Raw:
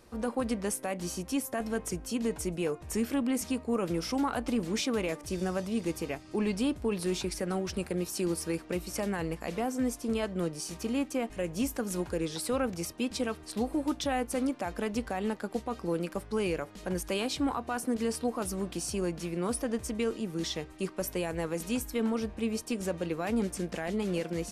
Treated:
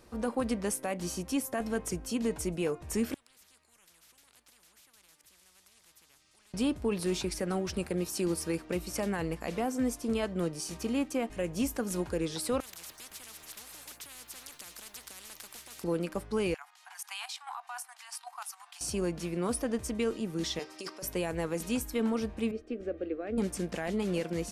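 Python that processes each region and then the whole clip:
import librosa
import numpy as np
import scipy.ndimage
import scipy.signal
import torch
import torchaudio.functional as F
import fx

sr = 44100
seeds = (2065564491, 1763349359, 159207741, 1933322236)

y = fx.chain(x, sr, fx.tone_stack(knobs='6-0-2'),
    fx.spectral_comp(ratio=10.0), at=(3.14, 6.54))
y = fx.chain(y, sr, fx.pre_emphasis(coefficient=0.8),
    fx.spectral_comp(ratio=10.0), at=(12.6, 15.84))
y = fx.chain(y, sr, fx.steep_highpass(hz=740.0, slope=96),
    fx.level_steps(step_db=10), at=(16.54, 18.81))
y = fx.chain(y, sr, fx.highpass(hz=380.0, slope=12),
    fx.peak_eq(hz=5200.0, db=13.5, octaves=0.41),
    fx.over_compress(threshold_db=-40.0, ratio=-1.0), at=(20.59, 21.03))
y = fx.chain(y, sr, fx.lowpass(hz=1500.0, slope=12),
    fx.fixed_phaser(hz=390.0, stages=4), at=(22.51, 23.38))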